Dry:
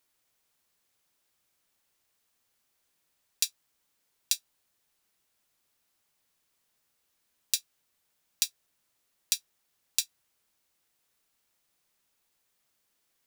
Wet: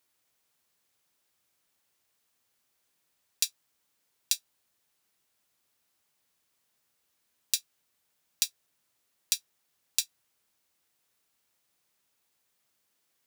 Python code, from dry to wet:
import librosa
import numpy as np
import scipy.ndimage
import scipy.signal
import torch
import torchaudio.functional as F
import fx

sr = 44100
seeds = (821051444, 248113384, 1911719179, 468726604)

y = scipy.signal.sosfilt(scipy.signal.butter(2, 57.0, 'highpass', fs=sr, output='sos'), x)